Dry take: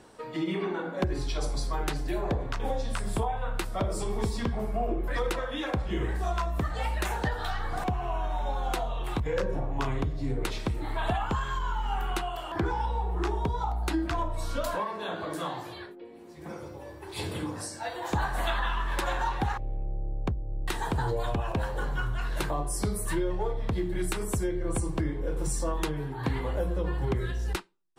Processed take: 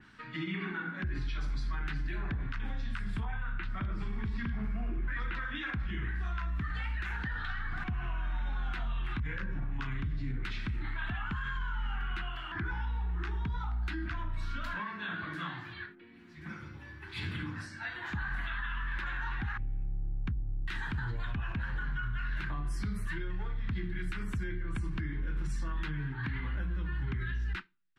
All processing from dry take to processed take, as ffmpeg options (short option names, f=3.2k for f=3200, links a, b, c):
-filter_complex "[0:a]asettb=1/sr,asplit=3[a][b][c];[a]atrim=end=3.254[d];[b]atrim=start=3.25:end=5.55,asetpts=PTS-STARTPTS,afade=t=in:d=0.004:c=qsin,afade=t=out:st=2.296:d=0.004:c=qsin,acrossover=split=4300[e][f];[f]acompressor=threshold=-59dB:ratio=4:attack=1:release=60[g];[e][g]amix=inputs=2:normalize=0,acrossover=split=3600[h][i];[i]adelay=40[j];[h][j]amix=inputs=2:normalize=0,atrim=end_sample=101430[k];[c]atrim=start=5.546[l];[d][k]acrossfade=d=0.004:c1=hsin:c2=qsin[m];[m][l]acrossfade=d=0.004:c1=qsin:c2=hsin,firequalizer=gain_entry='entry(220,0);entry(500,-23);entry(1500,6);entry(8500,-17)':delay=0.05:min_phase=1,alimiter=level_in=3.5dB:limit=-24dB:level=0:latency=1:release=35,volume=-3.5dB,adynamicequalizer=threshold=0.00178:dfrequency=3300:dqfactor=0.7:tfrequency=3300:tqfactor=0.7:attack=5:release=100:ratio=0.375:range=3.5:mode=cutabove:tftype=highshelf"